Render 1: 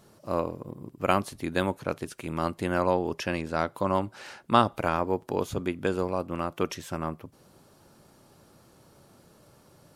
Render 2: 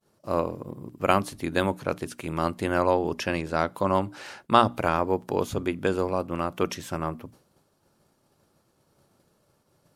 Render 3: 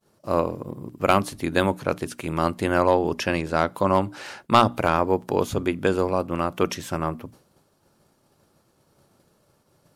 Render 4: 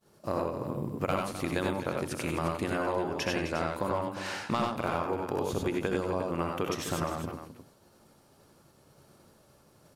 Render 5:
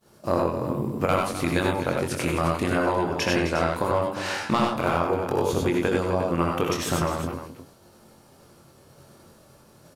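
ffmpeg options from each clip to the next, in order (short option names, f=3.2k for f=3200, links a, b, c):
-af "bandreject=f=60:t=h:w=6,bandreject=f=120:t=h:w=6,bandreject=f=180:t=h:w=6,bandreject=f=240:t=h:w=6,bandreject=f=300:t=h:w=6,agate=range=-33dB:threshold=-48dB:ratio=3:detection=peak,volume=2.5dB"
-af "asoftclip=type=hard:threshold=-9.5dB,volume=3.5dB"
-filter_complex "[0:a]acompressor=threshold=-29dB:ratio=6,asplit=2[a][b];[b]aecho=0:1:66|83|97|185|258|354:0.316|0.447|0.668|0.1|0.266|0.266[c];[a][c]amix=inputs=2:normalize=0"
-filter_complex "[0:a]asplit=2[a][b];[b]adelay=23,volume=-5dB[c];[a][c]amix=inputs=2:normalize=0,volume=6dB"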